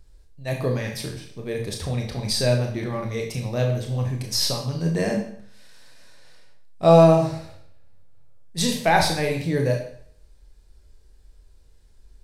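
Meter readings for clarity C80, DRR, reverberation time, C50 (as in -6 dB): 10.0 dB, 1.5 dB, 0.60 s, 6.0 dB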